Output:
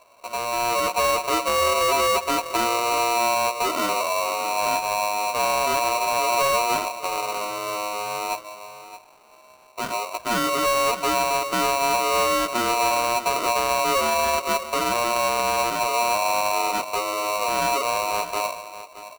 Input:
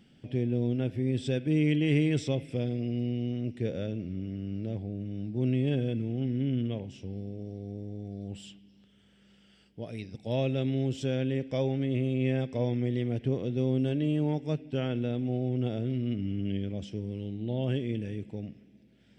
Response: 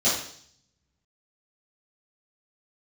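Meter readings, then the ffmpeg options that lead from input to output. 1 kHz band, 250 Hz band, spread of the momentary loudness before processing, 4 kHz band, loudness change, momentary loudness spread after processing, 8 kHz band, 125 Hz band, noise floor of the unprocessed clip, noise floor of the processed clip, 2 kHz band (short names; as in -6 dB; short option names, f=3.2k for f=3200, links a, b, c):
+29.5 dB, -5.0 dB, 12 LU, +17.5 dB, +9.0 dB, 8 LU, n/a, -15.5 dB, -61 dBFS, -50 dBFS, +18.5 dB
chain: -af "flanger=delay=15.5:depth=3.6:speed=0.52,alimiter=level_in=3dB:limit=-24dB:level=0:latency=1:release=244,volume=-3dB,volume=32.5dB,asoftclip=hard,volume=-32.5dB,lowpass=f=1k:w=0.5412,lowpass=f=1k:w=1.3066,aecho=1:1:620:0.2,dynaudnorm=f=140:g=9:m=6dB,aeval=exprs='val(0)*sgn(sin(2*PI*830*n/s))':c=same,volume=8.5dB"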